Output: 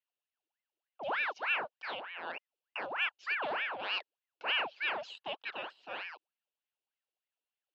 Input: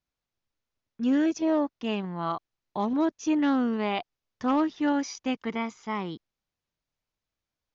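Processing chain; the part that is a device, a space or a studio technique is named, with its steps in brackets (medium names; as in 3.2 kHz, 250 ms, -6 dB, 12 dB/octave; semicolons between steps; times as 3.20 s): voice changer toy (ring modulator with a swept carrier 1.2 kHz, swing 75%, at 3.3 Hz; cabinet simulation 530–4300 Hz, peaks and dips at 1.2 kHz -6 dB, 2 kHz -8 dB, 2.8 kHz +9 dB); trim -5 dB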